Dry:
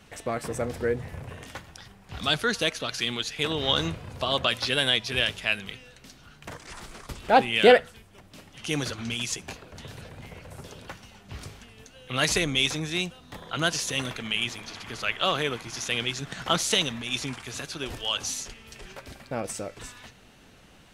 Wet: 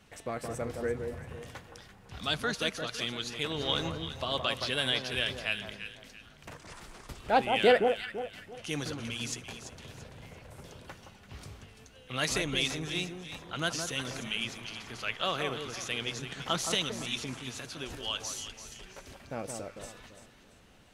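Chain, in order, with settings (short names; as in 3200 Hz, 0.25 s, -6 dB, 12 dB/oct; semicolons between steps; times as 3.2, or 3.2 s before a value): echo with dull and thin repeats by turns 0.169 s, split 1300 Hz, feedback 56%, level -5 dB; gain -6.5 dB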